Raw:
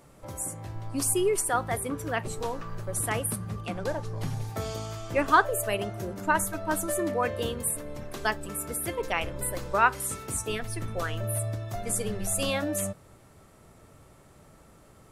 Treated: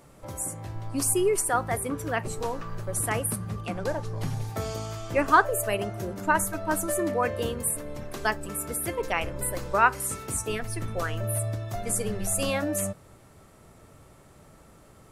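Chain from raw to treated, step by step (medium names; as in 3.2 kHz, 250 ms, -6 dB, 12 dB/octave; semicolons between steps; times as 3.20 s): dynamic bell 3.5 kHz, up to -6 dB, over -51 dBFS, Q 3.3; trim +1.5 dB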